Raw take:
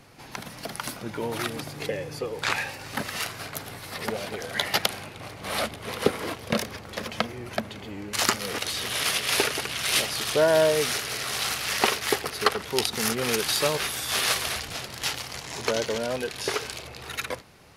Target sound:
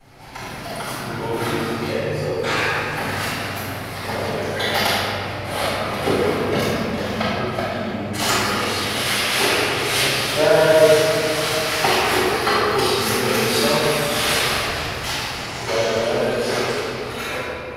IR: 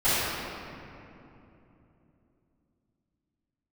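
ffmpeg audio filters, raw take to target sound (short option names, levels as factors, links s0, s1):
-filter_complex "[1:a]atrim=start_sample=2205[s0];[0:a][s0]afir=irnorm=-1:irlink=0,volume=0.355"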